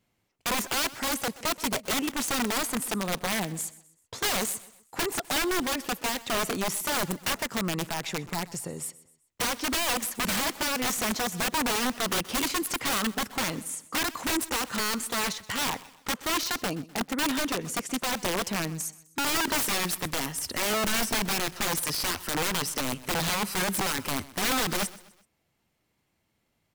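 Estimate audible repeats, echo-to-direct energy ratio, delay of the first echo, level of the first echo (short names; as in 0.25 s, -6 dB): 3, -18.0 dB, 0.127 s, -19.0 dB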